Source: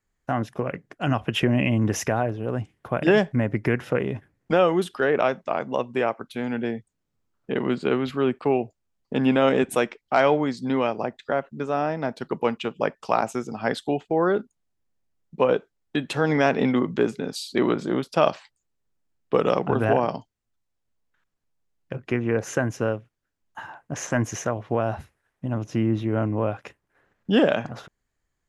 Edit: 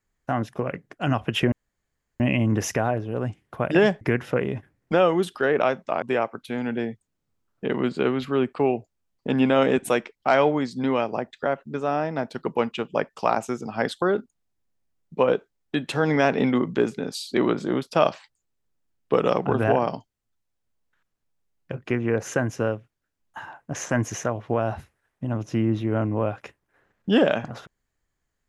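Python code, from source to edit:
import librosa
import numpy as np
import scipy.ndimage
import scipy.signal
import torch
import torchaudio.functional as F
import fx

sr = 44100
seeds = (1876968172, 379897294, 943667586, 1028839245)

y = fx.edit(x, sr, fx.insert_room_tone(at_s=1.52, length_s=0.68),
    fx.cut(start_s=3.33, length_s=0.27),
    fx.cut(start_s=5.61, length_s=0.27),
    fx.cut(start_s=13.88, length_s=0.35), tone=tone)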